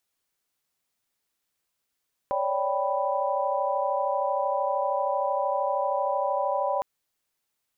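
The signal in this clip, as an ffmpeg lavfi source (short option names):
-f lavfi -i "aevalsrc='0.0355*(sin(2*PI*554.37*t)+sin(2*PI*587.33*t)+sin(2*PI*783.99*t)+sin(2*PI*987.77*t))':d=4.51:s=44100"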